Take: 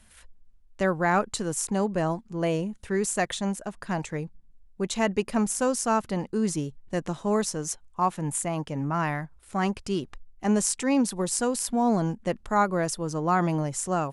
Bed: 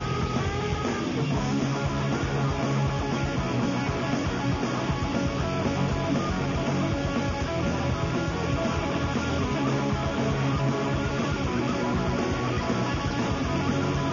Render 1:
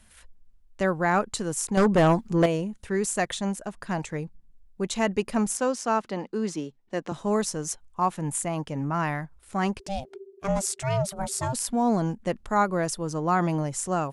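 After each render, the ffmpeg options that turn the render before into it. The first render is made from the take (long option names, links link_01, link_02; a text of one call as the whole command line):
ffmpeg -i in.wav -filter_complex "[0:a]asettb=1/sr,asplit=3[link_01][link_02][link_03];[link_01]atrim=end=1.774[link_04];[link_02]atrim=start=1.77:end=2.46,asetpts=PTS-STARTPTS,afade=type=in:duration=0.004:curve=qsin,afade=type=out:start_time=0.686:duration=0.004:curve=qsin,aeval=exprs='0.2*sin(PI/2*2*val(0)/0.2)':channel_layout=same[link_05];[link_03]atrim=start=2.456[link_06];[link_04][link_05]acrossfade=duration=0.004:curve1=hsin:curve2=qsin[link_07];[link_07][link_06]acrossfade=duration=0.004:curve1=qsin:curve2=hsin,asettb=1/sr,asplit=3[link_08][link_09][link_10];[link_08]atrim=end=5.574[link_11];[link_09]atrim=start=5.57:end=7.12,asetpts=PTS-STARTPTS,afade=type=in:duration=0.004:curve=qsin,afade=type=out:start_time=1.546:duration=0.004:curve=qsin,acrossover=split=190 6400:gain=0.112 1 0.178[link_12][link_13][link_14];[link_12][link_13][link_14]amix=inputs=3:normalize=0[link_15];[link_10]atrim=start=7.116[link_16];[link_11][link_15]acrossfade=duration=0.004:curve1=hsin:curve2=qsin[link_17];[link_17][link_16]acrossfade=duration=0.004:curve1=qsin:curve2=hsin,asplit=3[link_18][link_19][link_20];[link_18]afade=type=out:start_time=9.79:duration=0.02[link_21];[link_19]aeval=exprs='val(0)*sin(2*PI*390*n/s)':channel_layout=same,afade=type=in:start_time=9.79:duration=0.02,afade=type=out:start_time=11.52:duration=0.02[link_22];[link_20]afade=type=in:start_time=11.52:duration=0.02[link_23];[link_21][link_22][link_23]amix=inputs=3:normalize=0" out.wav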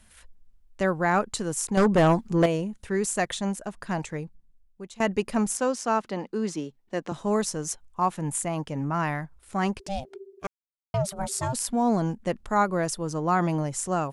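ffmpeg -i in.wav -filter_complex "[0:a]asplit=4[link_01][link_02][link_03][link_04];[link_01]atrim=end=5,asetpts=PTS-STARTPTS,afade=type=out:start_time=4.01:duration=0.99:silence=0.11885[link_05];[link_02]atrim=start=5:end=10.47,asetpts=PTS-STARTPTS,afade=type=in:duration=0.004:curve=hsin:silence=0.11885,afade=type=out:start_time=5.466:duration=0.004:curve=hsin[link_06];[link_03]atrim=start=10.47:end=10.94,asetpts=PTS-STARTPTS,volume=0[link_07];[link_04]atrim=start=10.94,asetpts=PTS-STARTPTS,afade=type=in:duration=0.004:curve=hsin[link_08];[link_05][link_06][link_07][link_08]concat=n=4:v=0:a=1" out.wav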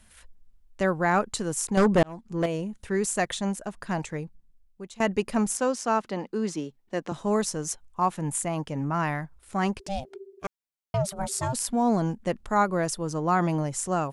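ffmpeg -i in.wav -filter_complex "[0:a]asplit=2[link_01][link_02];[link_01]atrim=end=2.03,asetpts=PTS-STARTPTS,afade=type=out:start_time=2.026:duration=0.004:curve=hsin[link_03];[link_02]atrim=start=2.03,asetpts=PTS-STARTPTS,afade=type=in:duration=0.75[link_04];[link_03][link_04]concat=n=2:v=0:a=1" out.wav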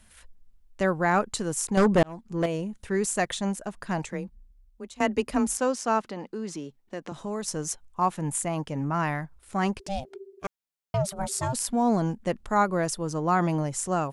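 ffmpeg -i in.wav -filter_complex "[0:a]asettb=1/sr,asplit=3[link_01][link_02][link_03];[link_01]atrim=end=4.124[link_04];[link_02]atrim=start=4.12:end=5.58,asetpts=PTS-STARTPTS,afade=type=in:duration=0.004:curve=qsin,afade=type=out:start_time=1.456:duration=0.004:curve=qsin,afreqshift=24[link_05];[link_03]atrim=start=5.576[link_06];[link_04][link_05]acrossfade=duration=0.004:curve1=hsin:curve2=qsin[link_07];[link_07][link_06]acrossfade=duration=0.004:curve1=qsin:curve2=hsin,asettb=1/sr,asplit=3[link_08][link_09][link_10];[link_08]atrim=end=6.114[link_11];[link_09]atrim=start=6.11:end=7.48,asetpts=PTS-STARTPTS,afade=type=in:duration=0.004:curve=qsin,afade=type=out:start_time=1.366:duration=0.004:curve=qsin,acompressor=threshold=-34dB:ratio=2:attack=3.2:release=140:knee=1:detection=peak[link_12];[link_10]atrim=start=7.476[link_13];[link_11][link_12]acrossfade=duration=0.004:curve1=hsin:curve2=qsin[link_14];[link_14][link_13]acrossfade=duration=0.004:curve1=qsin:curve2=hsin" out.wav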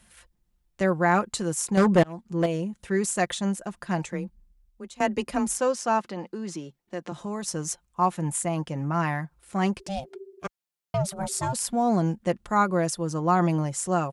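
ffmpeg -i in.wav -af "highpass=44,aecho=1:1:5.7:0.38" out.wav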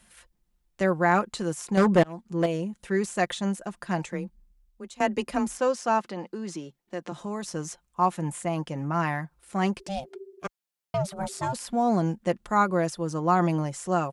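ffmpeg -i in.wav -filter_complex "[0:a]acrossover=split=4300[link_01][link_02];[link_02]acompressor=threshold=-38dB:ratio=4:attack=1:release=60[link_03];[link_01][link_03]amix=inputs=2:normalize=0,equalizer=frequency=83:width=1.3:gain=-8" out.wav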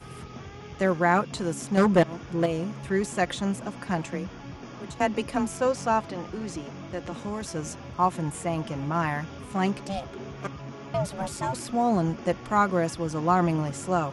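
ffmpeg -i in.wav -i bed.wav -filter_complex "[1:a]volume=-14.5dB[link_01];[0:a][link_01]amix=inputs=2:normalize=0" out.wav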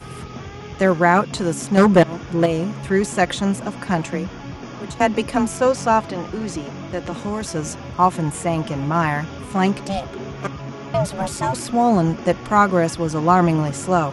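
ffmpeg -i in.wav -af "volume=7.5dB,alimiter=limit=-3dB:level=0:latency=1" out.wav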